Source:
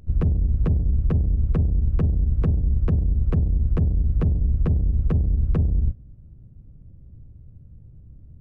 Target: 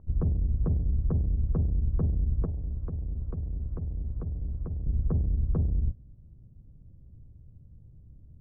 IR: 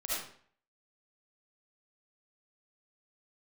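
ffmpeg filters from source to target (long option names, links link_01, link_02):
-filter_complex "[0:a]asettb=1/sr,asplit=3[link_01][link_02][link_03];[link_01]atrim=end=2.454[link_04];[link_02]atrim=start=2.45:end=4.87,asetpts=PTS-STARTPTS,afade=type=in:duration=0.004:curve=qsin,afade=type=out:start_time=2.416:duration=0.004:curve=qsin,acrossover=split=93|480[link_05][link_06][link_07];[link_05]acompressor=threshold=-26dB:ratio=4[link_08];[link_06]acompressor=threshold=-34dB:ratio=4[link_09];[link_07]acompressor=threshold=-46dB:ratio=4[link_10];[link_08][link_09][link_10]amix=inputs=3:normalize=0[link_11];[link_03]atrim=start=4.866[link_12];[link_04][link_11]acrossfade=duration=0.004:curve1=hsin:curve2=qsin[link_13];[link_13][link_12]acrossfade=duration=0.004:curve1=qsin:curve2=hsin,lowpass=frequency=1200:width=0.5412,lowpass=frequency=1200:width=1.3066,volume=-6dB"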